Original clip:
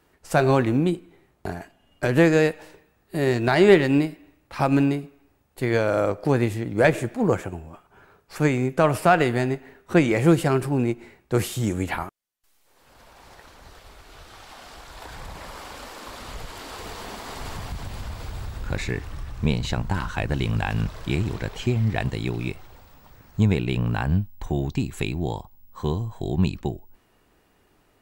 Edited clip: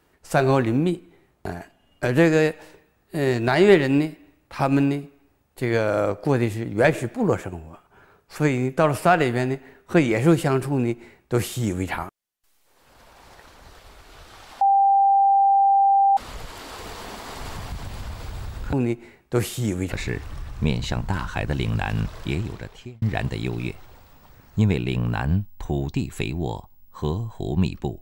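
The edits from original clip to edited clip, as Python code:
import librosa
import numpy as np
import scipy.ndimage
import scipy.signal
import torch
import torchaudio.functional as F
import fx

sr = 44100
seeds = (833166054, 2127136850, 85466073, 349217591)

y = fx.edit(x, sr, fx.duplicate(start_s=10.72, length_s=1.19, to_s=18.73),
    fx.bleep(start_s=14.61, length_s=1.56, hz=790.0, db=-13.5),
    fx.fade_out_span(start_s=21.02, length_s=0.81), tone=tone)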